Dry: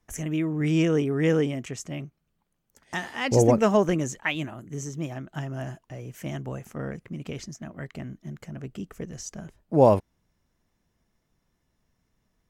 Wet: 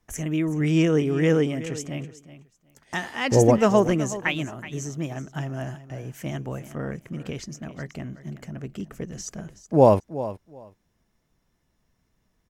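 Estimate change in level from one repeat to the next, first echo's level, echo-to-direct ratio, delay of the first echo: -15.5 dB, -14.5 dB, -14.5 dB, 373 ms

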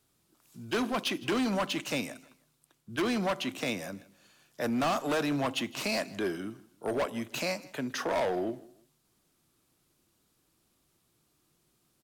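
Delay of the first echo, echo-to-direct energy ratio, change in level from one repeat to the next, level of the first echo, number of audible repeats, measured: 160 ms, -20.5 dB, -10.0 dB, -21.0 dB, 2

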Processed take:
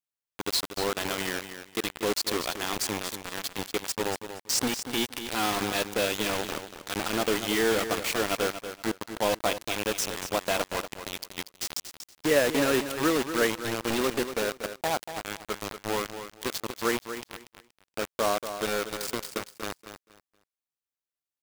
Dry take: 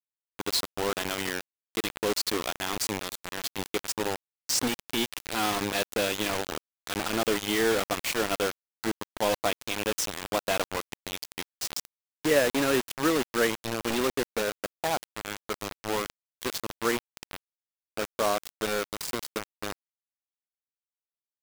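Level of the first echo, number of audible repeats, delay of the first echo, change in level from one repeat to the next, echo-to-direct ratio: -10.0 dB, 2, 237 ms, -13.0 dB, -10.0 dB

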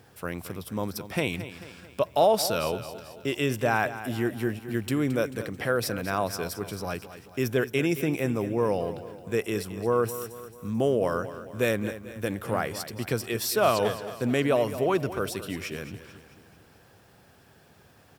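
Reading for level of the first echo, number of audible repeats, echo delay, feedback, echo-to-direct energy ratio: -13.0 dB, 4, 220 ms, 50%, -11.5 dB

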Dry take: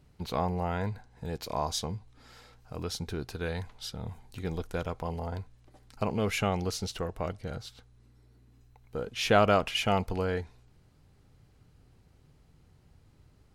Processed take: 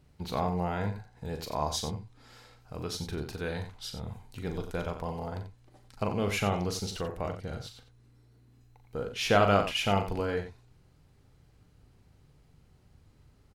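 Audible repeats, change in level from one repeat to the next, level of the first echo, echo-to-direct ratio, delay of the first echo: 2, no regular repeats, -8.0 dB, -6.0 dB, 40 ms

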